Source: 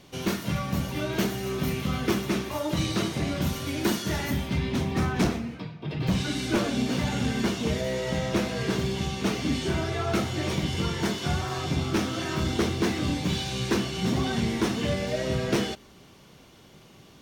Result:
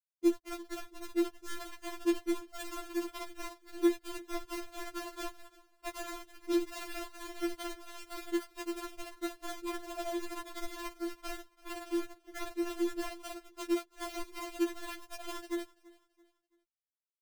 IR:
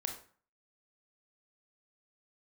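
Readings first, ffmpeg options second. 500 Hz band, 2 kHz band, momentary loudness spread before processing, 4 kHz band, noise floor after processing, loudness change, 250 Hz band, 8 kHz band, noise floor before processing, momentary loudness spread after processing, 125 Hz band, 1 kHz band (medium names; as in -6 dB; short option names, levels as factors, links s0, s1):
-8.0 dB, -12.5 dB, 3 LU, -14.5 dB, under -85 dBFS, -10.5 dB, -8.5 dB, -10.5 dB, -52 dBFS, 12 LU, under -35 dB, -10.0 dB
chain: -filter_complex "[0:a]aemphasis=mode=production:type=75fm,afftfilt=real='re*gte(hypot(re,im),0.251)':imag='im*gte(hypot(re,im),0.251)':win_size=1024:overlap=0.75,afwtdn=0.0178,lowpass=f=1000:t=q:w=2.4,asubboost=boost=11:cutoff=110,aphaser=in_gain=1:out_gain=1:delay=3.5:decay=0.3:speed=1.3:type=sinusoidal,asplit=2[s0][s1];[s1]acrusher=bits=5:dc=4:mix=0:aa=0.000001,volume=0.299[s2];[s0][s2]amix=inputs=2:normalize=0,acompressor=threshold=0.0631:ratio=20,acrusher=bits=2:mode=log:mix=0:aa=0.000001,aecho=1:1:334|668|1002:0.0794|0.0294|0.0109,afftfilt=real='re*4*eq(mod(b,16),0)':imag='im*4*eq(mod(b,16),0)':win_size=2048:overlap=0.75"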